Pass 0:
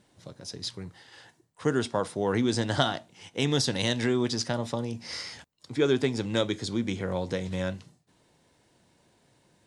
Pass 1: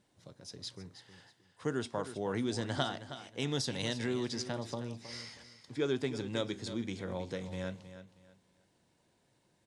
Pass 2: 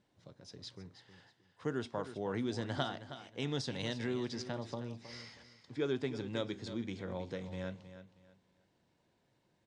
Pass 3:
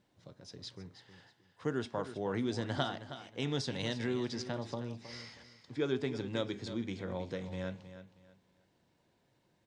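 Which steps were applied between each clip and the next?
feedback echo 0.317 s, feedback 27%, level -12 dB; gain -8.5 dB
air absorption 84 m; gain -2 dB
de-hum 209.4 Hz, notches 15; gain +2 dB

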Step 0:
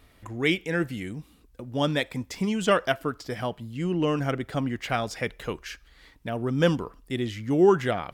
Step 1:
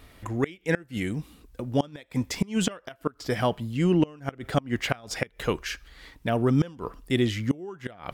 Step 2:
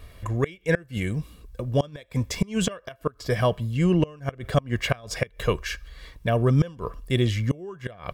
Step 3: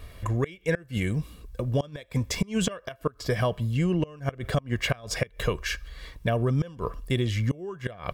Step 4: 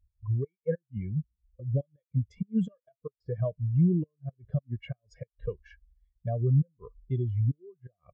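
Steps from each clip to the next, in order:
flipped gate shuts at -17 dBFS, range -26 dB; gain +5.5 dB
low shelf 200 Hz +6 dB; comb 1.8 ms, depth 50%
compressor 5:1, threshold -23 dBFS, peak gain reduction 8 dB; gain +1.5 dB
spectral expander 2.5:1; gain -3.5 dB

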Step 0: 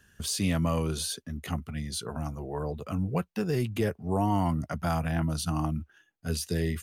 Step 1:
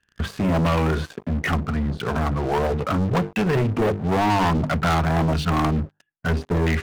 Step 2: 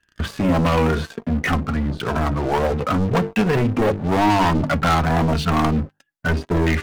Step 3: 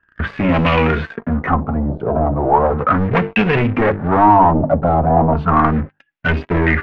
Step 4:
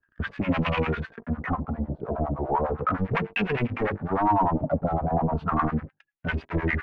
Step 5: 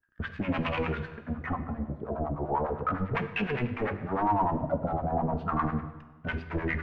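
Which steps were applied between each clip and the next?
notches 50/100/150/200/250/300/350/400/450 Hz; LFO low-pass saw down 1.5 Hz 710–2600 Hz; sample leveller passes 5; gain -3.5 dB
flange 0.46 Hz, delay 3 ms, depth 1.5 ms, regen +61%; gain +7 dB
LFO low-pass sine 0.36 Hz 630–2600 Hz; gain +2.5 dB
harmonic tremolo 9.9 Hz, depth 100%, crossover 730 Hz; gain -6.5 dB
plate-style reverb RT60 1.3 s, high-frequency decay 0.9×, DRR 9.5 dB; gain -4.5 dB

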